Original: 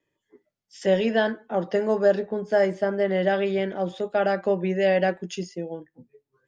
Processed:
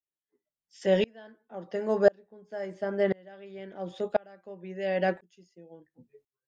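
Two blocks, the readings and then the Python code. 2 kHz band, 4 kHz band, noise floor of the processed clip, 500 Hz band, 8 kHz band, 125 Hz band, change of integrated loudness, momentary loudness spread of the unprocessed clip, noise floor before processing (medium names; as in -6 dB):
-8.5 dB, -7.0 dB, under -85 dBFS, -6.5 dB, no reading, -7.5 dB, -5.0 dB, 12 LU, -82 dBFS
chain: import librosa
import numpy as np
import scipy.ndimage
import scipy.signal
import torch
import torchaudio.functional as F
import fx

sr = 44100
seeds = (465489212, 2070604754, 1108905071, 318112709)

y = fx.tremolo_decay(x, sr, direction='swelling', hz=0.96, depth_db=33)
y = y * 10.0 ** (1.0 / 20.0)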